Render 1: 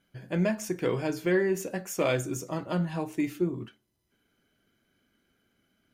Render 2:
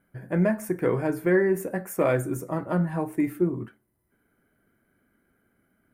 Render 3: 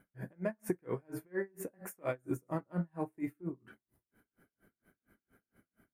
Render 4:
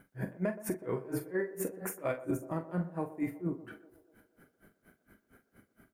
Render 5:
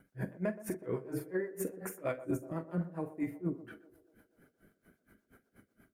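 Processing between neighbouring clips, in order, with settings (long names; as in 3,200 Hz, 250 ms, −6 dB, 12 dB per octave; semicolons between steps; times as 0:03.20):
flat-topped bell 4,300 Hz −16 dB; level +4 dB
downward compressor 6 to 1, threshold −32 dBFS, peak gain reduction 14 dB; tremolo with a sine in dB 4.3 Hz, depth 37 dB; level +3.5 dB
brickwall limiter −30.5 dBFS, peak gain reduction 10.5 dB; double-tracking delay 43 ms −10 dB; feedback echo with a band-pass in the loop 123 ms, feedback 72%, band-pass 550 Hz, level −14 dB; level +7 dB
rotating-speaker cabinet horn 8 Hz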